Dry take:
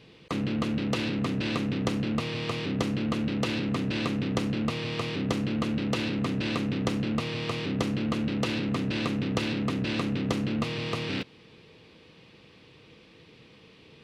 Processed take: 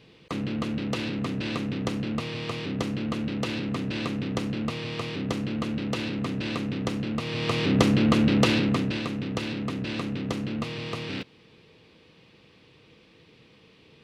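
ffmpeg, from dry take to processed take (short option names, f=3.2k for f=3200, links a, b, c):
-af "volume=8dB,afade=t=in:st=7.21:d=0.56:silence=0.354813,afade=t=out:st=8.43:d=0.6:silence=0.316228"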